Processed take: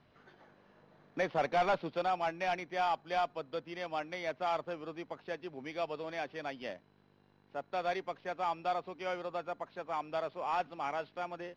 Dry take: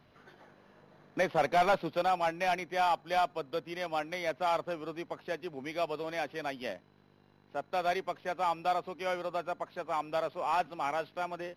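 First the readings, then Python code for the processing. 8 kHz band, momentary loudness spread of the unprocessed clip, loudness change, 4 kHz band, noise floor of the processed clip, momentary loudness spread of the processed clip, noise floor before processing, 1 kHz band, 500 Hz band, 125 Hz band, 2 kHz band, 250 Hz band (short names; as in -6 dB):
n/a, 10 LU, -3.5 dB, -4.0 dB, -67 dBFS, 10 LU, -64 dBFS, -3.5 dB, -3.5 dB, -3.5 dB, -3.5 dB, -3.5 dB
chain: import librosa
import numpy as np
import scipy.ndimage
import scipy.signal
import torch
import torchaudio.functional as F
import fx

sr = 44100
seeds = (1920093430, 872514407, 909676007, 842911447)

y = scipy.signal.sosfilt(scipy.signal.butter(2, 5800.0, 'lowpass', fs=sr, output='sos'), x)
y = F.gain(torch.from_numpy(y), -3.5).numpy()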